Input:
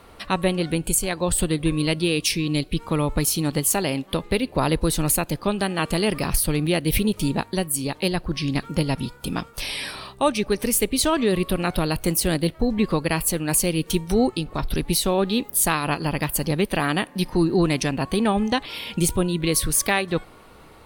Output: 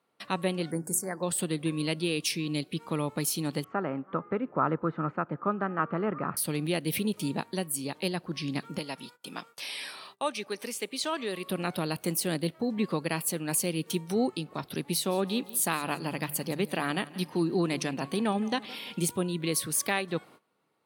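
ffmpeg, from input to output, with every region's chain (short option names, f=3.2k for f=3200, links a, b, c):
-filter_complex "[0:a]asettb=1/sr,asplit=3[a][b][c];[a]atrim=end=0.714[d];[b]atrim=start=0.71:end=1.23,asetpts=PTS-STARTPTS,afade=t=in:d=0.004:c=qsin,afade=t=out:st=0.516:d=0.004:c=qsin,asuperstop=centerf=3200:order=12:qfactor=1.1,bandreject=f=50:t=h:w=6,bandreject=f=100:t=h:w=6,bandreject=f=150:t=h:w=6,bandreject=f=200:t=h:w=6,bandreject=f=250:t=h:w=6,bandreject=f=300:t=h:w=6,bandreject=f=350:t=h:w=6,bandreject=f=400:t=h:w=6[e];[c]atrim=start=1.226[f];[d][e]acrossfade=d=0.004:c1=hsin:c2=qsin[g];[g][f]acrossfade=d=0.004:c1=qsin:c2=hsin,asettb=1/sr,asplit=3[h][i][j];[h]atrim=end=3.644[k];[i]atrim=start=3.64:end=6.37,asetpts=PTS-STARTPTS,afade=t=in:d=0.004:c=qsin,afade=t=out:st=2.726:d=0.004:c=qsin,lowpass=f=1.7k:w=0.5412,lowpass=f=1.7k:w=1.3066,equalizer=f=1.3k:t=o:w=0.35:g=14[l];[j]atrim=start=6.366[m];[k][l]acrossfade=d=0.004:c1=hsin:c2=qsin[n];[n][m]acrossfade=d=0.004:c1=qsin:c2=hsin,asettb=1/sr,asplit=3[o][p][q];[o]atrim=end=8.784[r];[p]atrim=start=8.78:end=11.46,asetpts=PTS-STARTPTS,afade=t=in:d=0.004:c=qsin,afade=t=out:st=2.676:d=0.004:c=qsin,acrossover=split=7400[s][t];[t]acompressor=threshold=-37dB:ratio=4:attack=1:release=60[u];[s][u]amix=inputs=2:normalize=0,highpass=f=630:p=1[v];[q]atrim=start=11.456[w];[r][v]acrossfade=d=0.004:c1=hsin:c2=qsin[x];[x][w]acrossfade=d=0.004:c1=qsin:c2=hsin,asettb=1/sr,asplit=3[y][z][aa];[y]atrim=end=14.874[ab];[z]atrim=start=14.87:end=19.05,asetpts=PTS-STARTPTS,afade=t=in:d=0.004:c=qsin,afade=t=out:st=4.176:d=0.004:c=qsin,bandreject=f=50:t=h:w=6,bandreject=f=100:t=h:w=6,bandreject=f=150:t=h:w=6,aecho=1:1:169|338|507:0.112|0.0438|0.0171,atrim=end_sample=184338[ac];[aa]atrim=start=19.046[ad];[ab][ac]acrossfade=d=0.004:c1=hsin:c2=qsin[ae];[ae][ad]acrossfade=d=0.004:c1=qsin:c2=hsin,highpass=f=140:w=0.5412,highpass=f=140:w=1.3066,agate=range=-19dB:threshold=-43dB:ratio=16:detection=peak,volume=-7.5dB"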